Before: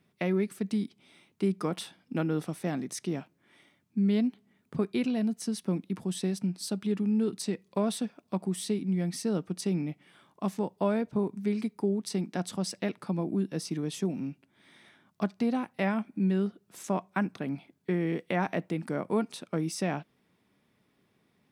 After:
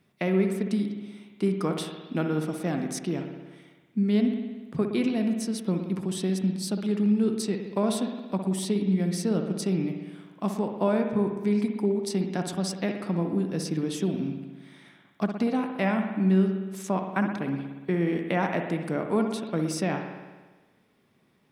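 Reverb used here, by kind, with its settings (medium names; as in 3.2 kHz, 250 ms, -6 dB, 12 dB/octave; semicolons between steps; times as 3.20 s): spring tank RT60 1.3 s, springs 58 ms, chirp 80 ms, DRR 4.5 dB; trim +2.5 dB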